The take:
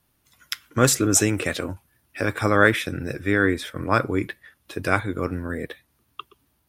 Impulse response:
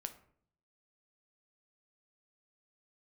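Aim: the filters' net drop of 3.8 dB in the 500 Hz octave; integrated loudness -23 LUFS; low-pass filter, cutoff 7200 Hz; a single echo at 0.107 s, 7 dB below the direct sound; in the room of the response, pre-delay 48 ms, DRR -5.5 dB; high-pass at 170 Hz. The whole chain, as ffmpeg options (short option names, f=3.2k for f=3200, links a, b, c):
-filter_complex "[0:a]highpass=170,lowpass=7.2k,equalizer=f=500:t=o:g=-4.5,aecho=1:1:107:0.447,asplit=2[a][b];[1:a]atrim=start_sample=2205,adelay=48[c];[b][c]afir=irnorm=-1:irlink=0,volume=8dB[d];[a][d]amix=inputs=2:normalize=0,volume=-5dB"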